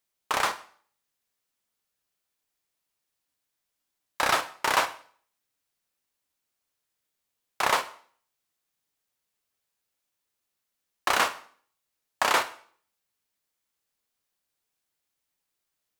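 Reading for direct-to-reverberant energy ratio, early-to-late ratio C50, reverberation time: 8.5 dB, 14.5 dB, 0.50 s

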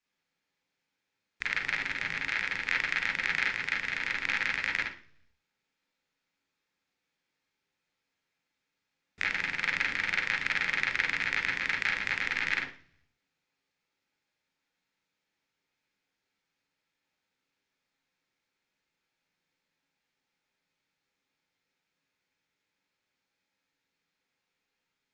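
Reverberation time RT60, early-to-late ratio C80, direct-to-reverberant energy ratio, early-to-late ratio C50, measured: 0.50 s, 12.0 dB, -4.5 dB, 4.0 dB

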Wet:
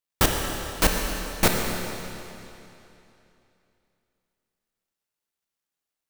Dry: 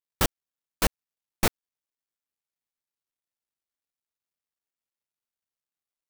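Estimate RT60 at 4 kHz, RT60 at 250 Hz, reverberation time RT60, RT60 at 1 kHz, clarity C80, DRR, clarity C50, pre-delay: 2.7 s, 2.9 s, 2.9 s, 2.9 s, 2.5 dB, 1.0 dB, 2.0 dB, 28 ms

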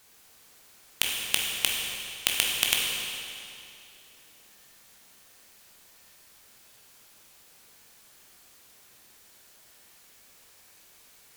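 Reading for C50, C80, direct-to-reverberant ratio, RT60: 0.0 dB, 1.5 dB, -2.0 dB, 2.6 s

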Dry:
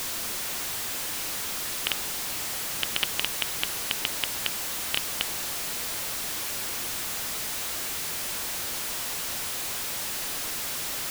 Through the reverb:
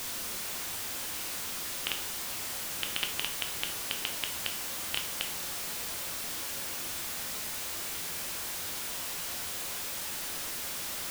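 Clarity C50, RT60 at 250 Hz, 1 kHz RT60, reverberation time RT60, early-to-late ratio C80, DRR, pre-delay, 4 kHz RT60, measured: 11.0 dB, 0.35 s, 0.40 s, 0.40 s, 16.0 dB, 5.0 dB, 6 ms, 0.40 s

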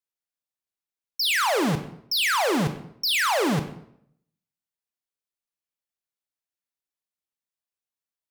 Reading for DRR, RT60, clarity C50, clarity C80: 7.5 dB, 0.65 s, 10.5 dB, 13.0 dB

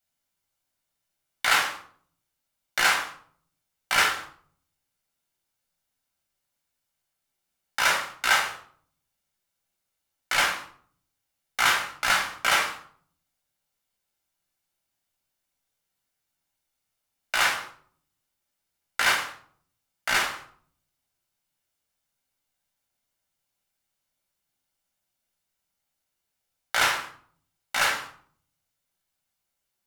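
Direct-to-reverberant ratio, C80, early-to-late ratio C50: 0.5 dB, 12.0 dB, 7.5 dB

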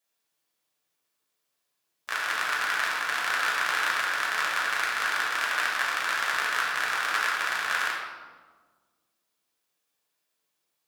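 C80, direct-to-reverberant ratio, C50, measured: 3.5 dB, -4.5 dB, 1.5 dB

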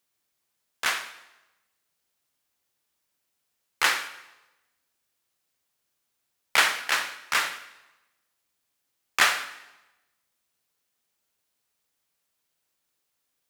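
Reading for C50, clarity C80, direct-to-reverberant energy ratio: 12.5 dB, 14.5 dB, 10.5 dB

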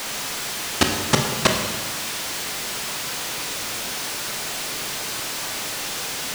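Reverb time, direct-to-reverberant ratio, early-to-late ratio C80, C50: 1.5 s, 2.0 dB, 6.0 dB, 4.5 dB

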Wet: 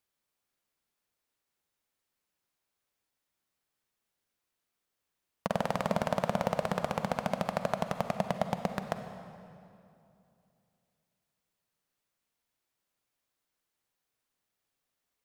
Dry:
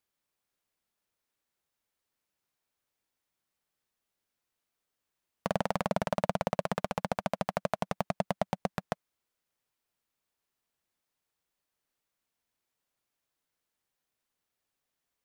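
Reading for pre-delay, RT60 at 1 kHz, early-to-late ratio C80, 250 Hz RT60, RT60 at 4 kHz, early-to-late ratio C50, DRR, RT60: 38 ms, 2.6 s, 9.0 dB, 3.1 s, 2.0 s, 8.0 dB, 7.5 dB, 2.7 s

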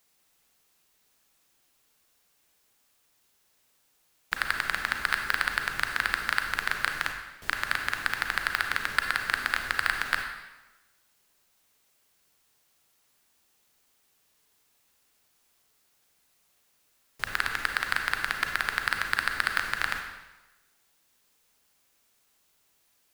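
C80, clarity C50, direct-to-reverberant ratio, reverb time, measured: 7.5 dB, 5.5 dB, 4.0 dB, 1.1 s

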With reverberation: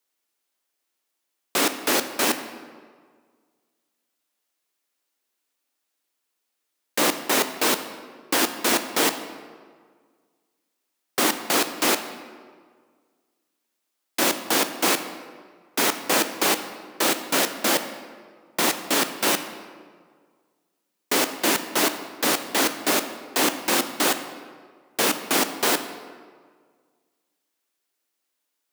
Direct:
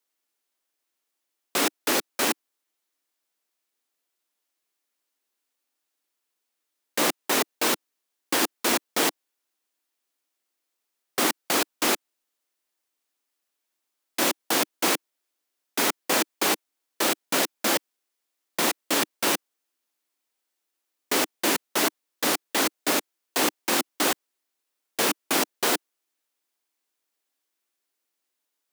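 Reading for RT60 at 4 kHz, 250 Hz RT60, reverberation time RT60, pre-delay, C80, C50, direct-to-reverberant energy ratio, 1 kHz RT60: 1.1 s, 1.8 s, 1.8 s, 14 ms, 12.0 dB, 10.5 dB, 9.0 dB, 1.7 s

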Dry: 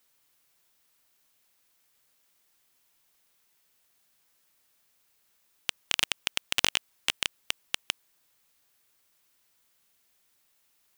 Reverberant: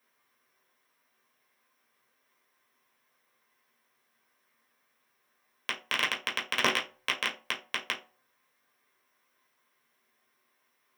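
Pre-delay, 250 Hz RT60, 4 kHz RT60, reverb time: 3 ms, 0.35 s, 0.20 s, 0.40 s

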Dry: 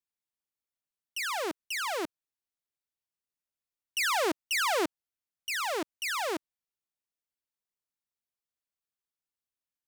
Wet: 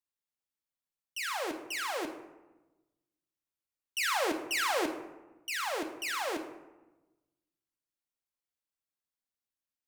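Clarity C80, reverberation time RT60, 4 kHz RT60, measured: 11.5 dB, 1.1 s, 0.55 s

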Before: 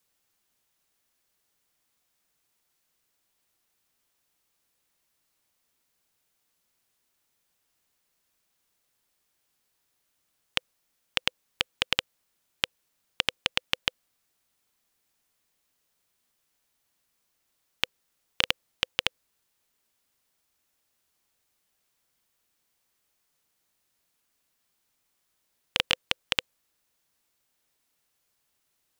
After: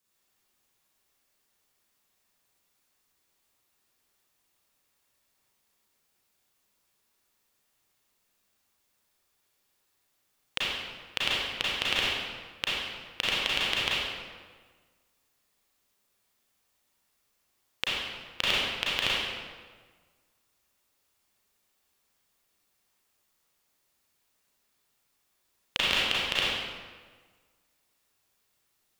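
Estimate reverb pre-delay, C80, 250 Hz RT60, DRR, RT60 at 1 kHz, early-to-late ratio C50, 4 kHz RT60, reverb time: 31 ms, -0.5 dB, 1.6 s, -7.5 dB, 1.5 s, -3.5 dB, 1.1 s, 1.5 s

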